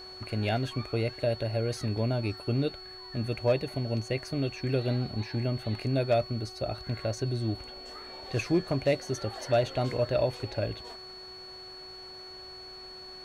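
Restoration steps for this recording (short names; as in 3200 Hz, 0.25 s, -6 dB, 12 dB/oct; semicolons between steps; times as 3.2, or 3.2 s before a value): clip repair -16.5 dBFS; de-hum 372.9 Hz, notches 27; notch 4400 Hz, Q 30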